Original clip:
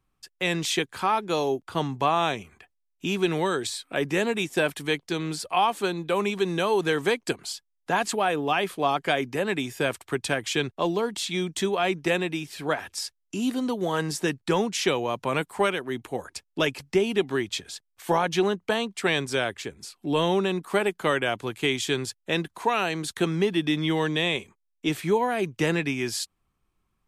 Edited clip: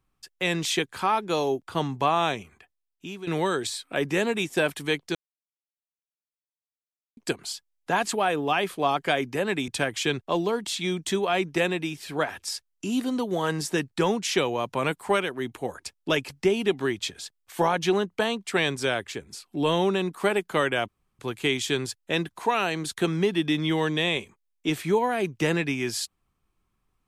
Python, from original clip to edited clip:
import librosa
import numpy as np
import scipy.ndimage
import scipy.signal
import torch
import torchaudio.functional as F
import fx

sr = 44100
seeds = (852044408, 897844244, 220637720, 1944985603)

y = fx.edit(x, sr, fx.fade_out_to(start_s=2.32, length_s=0.95, floor_db=-15.5),
    fx.silence(start_s=5.15, length_s=2.02),
    fx.cut(start_s=9.68, length_s=0.5),
    fx.insert_room_tone(at_s=21.38, length_s=0.31), tone=tone)